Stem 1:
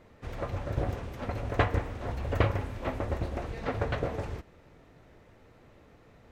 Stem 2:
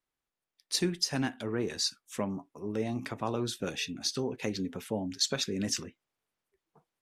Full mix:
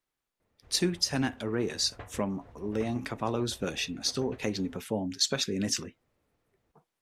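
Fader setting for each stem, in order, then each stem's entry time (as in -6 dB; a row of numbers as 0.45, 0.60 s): -19.5, +2.0 dB; 0.40, 0.00 s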